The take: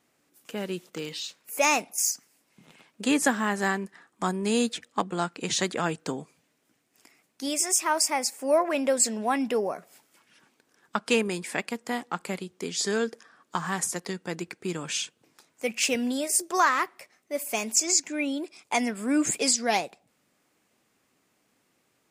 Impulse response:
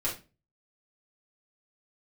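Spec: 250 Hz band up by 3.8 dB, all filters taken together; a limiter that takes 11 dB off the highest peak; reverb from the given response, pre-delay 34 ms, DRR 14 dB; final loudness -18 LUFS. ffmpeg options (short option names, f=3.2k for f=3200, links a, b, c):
-filter_complex "[0:a]equalizer=f=250:t=o:g=4.5,alimiter=limit=-19.5dB:level=0:latency=1,asplit=2[a][b];[1:a]atrim=start_sample=2205,adelay=34[c];[b][c]afir=irnorm=-1:irlink=0,volume=-20dB[d];[a][d]amix=inputs=2:normalize=0,volume=12dB"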